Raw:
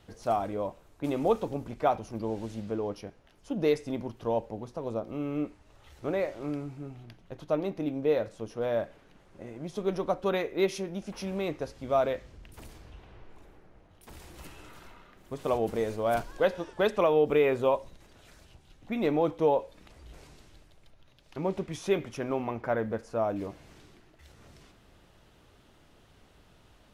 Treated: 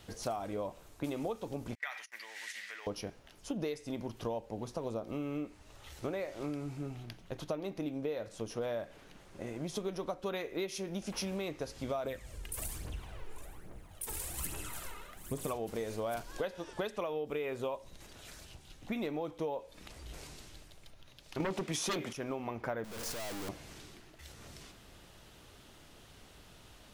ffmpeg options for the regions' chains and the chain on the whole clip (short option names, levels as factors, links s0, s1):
-filter_complex "[0:a]asettb=1/sr,asplit=3[s0][s1][s2];[s0]atrim=end=1.754[s3];[s1]atrim=start=1.75:end=2.87,asetpts=PTS-STARTPTS,afade=t=in:d=0.004:c=qsin,afade=t=out:st=1.116:d=0.004:c=qsin,agate=range=0.0355:threshold=0.00708:ratio=16:release=100:detection=peak,acompressor=threshold=0.0316:ratio=4:attack=3.2:release=140:knee=1:detection=peak,highpass=f=1900:t=q:w=11[s4];[s2]atrim=start=2.866[s5];[s3][s4]acrossfade=d=0.004:c1=hsin:c2=qsin[s6];[s6][s5]acrossfade=d=0.004:c1=qsin:c2=hsin,asettb=1/sr,asplit=3[s7][s8][s9];[s7]atrim=end=12.054[s10];[s8]atrim=start=12.05:end=15.53,asetpts=PTS-STARTPTS,afade=t=in:d=0.004:c=qsin,afade=t=out:st=3.476:d=0.004:c=qsin,highshelf=f=6800:t=q:w=1.5:g=7,aphaser=in_gain=1:out_gain=1:delay=2.5:decay=0.54:speed=1.2:type=triangular[s11];[s9]atrim=start=15.526[s12];[s10][s11]acrossfade=d=0.004:c1=hsin:c2=qsin[s13];[s13][s12]acrossfade=d=0.004:c1=qsin:c2=hsin,asettb=1/sr,asplit=3[s14][s15][s16];[s14]atrim=end=21.404[s17];[s15]atrim=start=21.4:end=22.13,asetpts=PTS-STARTPTS,afade=t=in:d=0.004:c=qsin,afade=t=out:st=0.726:d=0.004:c=qsin,highpass=160,aeval=exprs='0.2*sin(PI/2*3.98*val(0)/0.2)':c=same[s18];[s16]atrim=start=22.126[s19];[s17][s18]acrossfade=d=0.004:c1=hsin:c2=qsin[s20];[s20][s19]acrossfade=d=0.004:c1=qsin:c2=hsin,asettb=1/sr,asplit=3[s21][s22][s23];[s21]atrim=end=22.844[s24];[s22]atrim=start=22.84:end=23.49,asetpts=PTS-STARTPTS,afade=t=in:d=0.004:c=qsin,afade=t=out:st=0.646:d=0.004:c=qsin,aeval=exprs='val(0)+0.5*0.0178*sgn(val(0))':c=same,aeval=exprs='(tanh(141*val(0)+0.7)-tanh(0.7))/141':c=same[s25];[s23]atrim=start=23.486[s26];[s24][s25]acrossfade=d=0.004:c1=hsin:c2=qsin[s27];[s27][s26]acrossfade=d=0.004:c1=qsin:c2=hsin,highshelf=f=3000:g=8.5,acompressor=threshold=0.0178:ratio=10,volume=1.19"